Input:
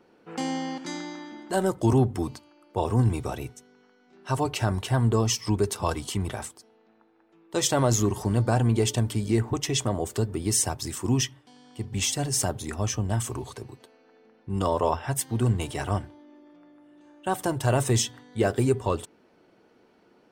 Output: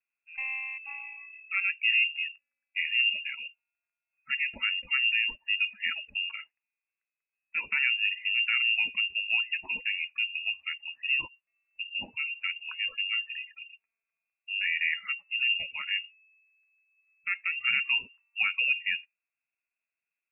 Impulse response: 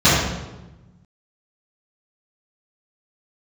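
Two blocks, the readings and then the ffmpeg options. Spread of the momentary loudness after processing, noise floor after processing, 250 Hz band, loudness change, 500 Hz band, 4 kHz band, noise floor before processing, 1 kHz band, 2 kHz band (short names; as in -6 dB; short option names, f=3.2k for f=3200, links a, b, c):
14 LU, under -85 dBFS, under -30 dB, -1.5 dB, under -30 dB, +4.5 dB, -61 dBFS, -17.5 dB, +12.5 dB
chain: -af "afftdn=nr=27:nf=-33,lowpass=f=2.5k:t=q:w=0.5098,lowpass=f=2.5k:t=q:w=0.6013,lowpass=f=2.5k:t=q:w=0.9,lowpass=f=2.5k:t=q:w=2.563,afreqshift=-2900,volume=-4.5dB"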